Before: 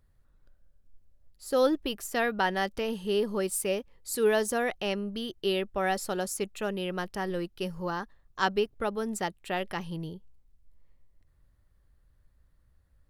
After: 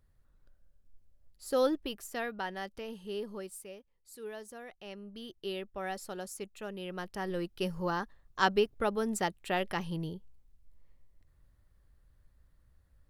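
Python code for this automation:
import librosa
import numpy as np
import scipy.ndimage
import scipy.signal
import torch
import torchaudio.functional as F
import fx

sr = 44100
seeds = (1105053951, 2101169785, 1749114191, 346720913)

y = fx.gain(x, sr, db=fx.line((1.48, -2.5), (2.47, -10.5), (3.32, -10.5), (3.72, -18.5), (4.68, -18.5), (5.27, -9.5), (6.68, -9.5), (7.64, 0.0)))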